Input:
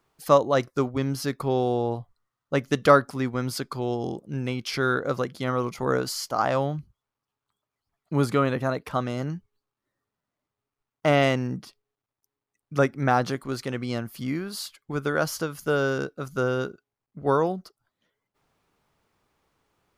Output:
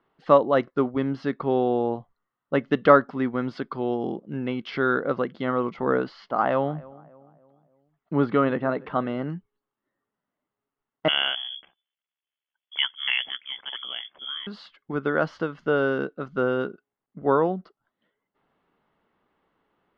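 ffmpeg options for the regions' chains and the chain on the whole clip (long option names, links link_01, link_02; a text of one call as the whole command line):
ffmpeg -i in.wav -filter_complex "[0:a]asettb=1/sr,asplit=3[link_01][link_02][link_03];[link_01]atrim=end=6.044[link_04];[link_02]atrim=start=6.04:end=9.24,asetpts=PTS-STARTPTS,afade=type=in:duration=0.004:curve=qsin,afade=type=out:start_time=3.196:duration=0.004:curve=qsin,lowpass=4200,asplit=2[link_05][link_06];[link_06]adelay=293,lowpass=frequency=1200:poles=1,volume=-20.5dB,asplit=2[link_07][link_08];[link_08]adelay=293,lowpass=frequency=1200:poles=1,volume=0.49,asplit=2[link_09][link_10];[link_10]adelay=293,lowpass=frequency=1200:poles=1,volume=0.49,asplit=2[link_11][link_12];[link_12]adelay=293,lowpass=frequency=1200:poles=1,volume=0.49[link_13];[link_05][link_07][link_09][link_11][link_13]amix=inputs=5:normalize=0,atrim=end_sample=141120[link_14];[link_03]atrim=start=9.236[link_15];[link_04][link_14]acrossfade=duration=0.004:curve1=hsin:curve2=qsin[link_16];[link_16][link_15]acrossfade=duration=0.004:curve1=qsin:curve2=hsin,asettb=1/sr,asplit=3[link_17][link_18][link_19];[link_17]atrim=end=11.084[link_20];[link_18]atrim=start=11.08:end=14.47,asetpts=PTS-STARTPTS,afade=type=in:duration=0.004:curve=qsin,afade=type=out:start_time=3.386:duration=0.004:curve=qsin,aeval=exprs='val(0)*sin(2*PI*35*n/s)':channel_layout=same,lowpass=frequency=3000:width_type=q:width=0.5098,lowpass=frequency=3000:width_type=q:width=0.6013,lowpass=frequency=3000:width_type=q:width=0.9,lowpass=frequency=3000:width_type=q:width=2.563,afreqshift=-3500[link_21];[link_19]atrim=start=14.466[link_22];[link_20][link_21]acrossfade=duration=0.004:curve1=hsin:curve2=qsin[link_23];[link_23][link_22]acrossfade=duration=0.004:curve1=qsin:curve2=hsin,lowpass=frequency=3100:width=0.5412,lowpass=frequency=3100:width=1.3066,lowshelf=frequency=150:width_type=q:width=1.5:gain=-7,bandreject=frequency=2400:width=8.5,volume=1dB" out.wav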